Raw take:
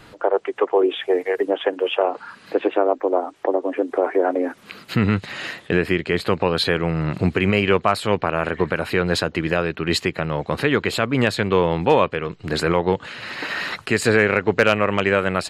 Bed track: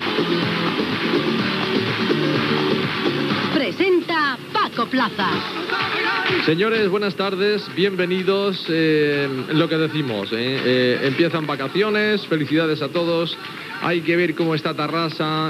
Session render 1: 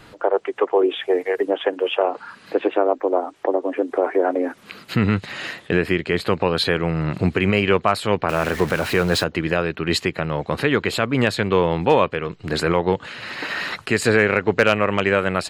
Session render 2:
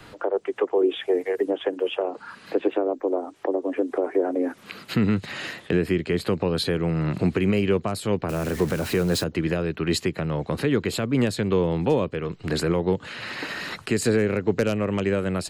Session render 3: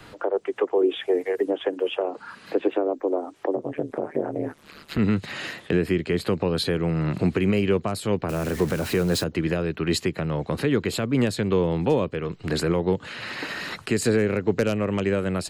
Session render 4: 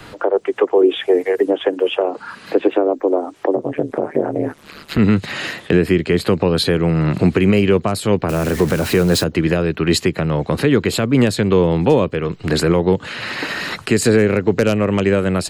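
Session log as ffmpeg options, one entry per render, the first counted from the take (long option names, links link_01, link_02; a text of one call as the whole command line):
ffmpeg -i in.wav -filter_complex "[0:a]asettb=1/sr,asplit=3[link_01][link_02][link_03];[link_01]atrim=end=8.294[link_04];[link_02]atrim=start=8.29:end=9.24,asetpts=PTS-STARTPTS,afade=type=in:duration=0.004:curve=qsin,afade=type=out:start_time=0.946:duration=0.004:curve=qsin,aeval=exprs='val(0)+0.5*0.0447*sgn(val(0))':channel_layout=same[link_05];[link_03]atrim=start=9.236[link_06];[link_04][link_05]acrossfade=duration=0.004:curve1=hsin:curve2=qsin[link_07];[link_07][link_06]acrossfade=duration=0.004:curve1=qsin:curve2=hsin" out.wav
ffmpeg -i in.wav -filter_complex "[0:a]acrossover=split=140|450|5100[link_01][link_02][link_03][link_04];[link_01]alimiter=level_in=5dB:limit=-24dB:level=0:latency=1,volume=-5dB[link_05];[link_03]acompressor=threshold=-31dB:ratio=6[link_06];[link_05][link_02][link_06][link_04]amix=inputs=4:normalize=0" out.wav
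ffmpeg -i in.wav -filter_complex "[0:a]asplit=3[link_01][link_02][link_03];[link_01]afade=type=out:start_time=3.55:duration=0.02[link_04];[link_02]tremolo=f=150:d=0.974,afade=type=in:start_time=3.55:duration=0.02,afade=type=out:start_time=4.98:duration=0.02[link_05];[link_03]afade=type=in:start_time=4.98:duration=0.02[link_06];[link_04][link_05][link_06]amix=inputs=3:normalize=0" out.wav
ffmpeg -i in.wav -af "volume=8dB,alimiter=limit=-3dB:level=0:latency=1" out.wav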